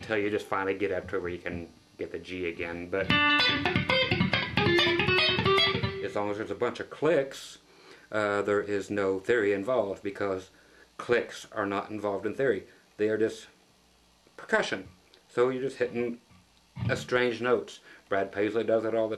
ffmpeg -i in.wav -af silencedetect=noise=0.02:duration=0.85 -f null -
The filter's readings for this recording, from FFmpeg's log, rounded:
silence_start: 13.38
silence_end: 14.39 | silence_duration: 1.00